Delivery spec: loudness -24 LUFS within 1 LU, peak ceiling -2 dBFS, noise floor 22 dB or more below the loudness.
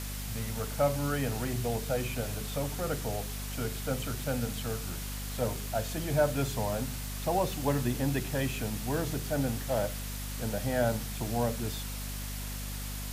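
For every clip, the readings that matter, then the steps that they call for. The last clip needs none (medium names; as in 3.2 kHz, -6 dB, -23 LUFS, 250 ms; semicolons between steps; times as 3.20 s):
hum 50 Hz; highest harmonic 250 Hz; hum level -36 dBFS; noise floor -37 dBFS; noise floor target -55 dBFS; loudness -32.5 LUFS; peak level -13.5 dBFS; loudness target -24.0 LUFS
-> de-hum 50 Hz, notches 5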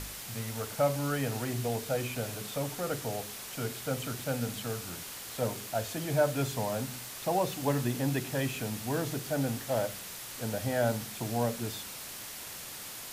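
hum not found; noise floor -43 dBFS; noise floor target -56 dBFS
-> noise reduction 13 dB, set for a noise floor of -43 dBFS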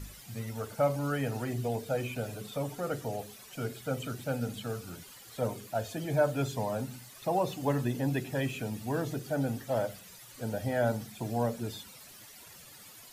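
noise floor -52 dBFS; noise floor target -56 dBFS
-> noise reduction 6 dB, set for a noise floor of -52 dBFS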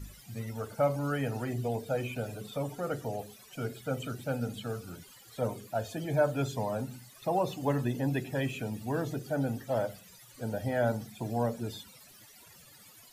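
noise floor -55 dBFS; noise floor target -56 dBFS
-> noise reduction 6 dB, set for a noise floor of -55 dBFS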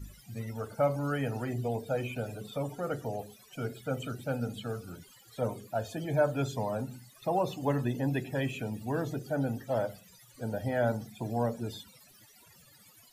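noise floor -58 dBFS; loudness -33.5 LUFS; peak level -14.0 dBFS; loudness target -24.0 LUFS
-> trim +9.5 dB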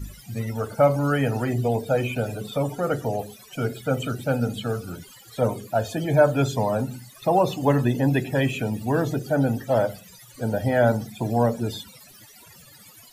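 loudness -24.0 LUFS; peak level -4.5 dBFS; noise floor -49 dBFS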